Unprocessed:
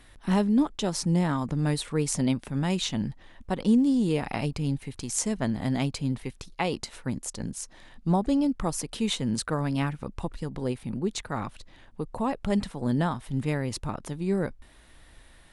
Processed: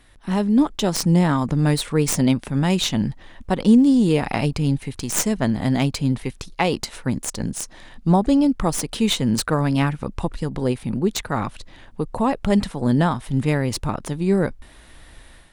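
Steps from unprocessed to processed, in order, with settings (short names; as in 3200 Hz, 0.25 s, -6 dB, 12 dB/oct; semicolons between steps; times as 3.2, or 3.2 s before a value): tracing distortion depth 0.072 ms; AGC gain up to 8 dB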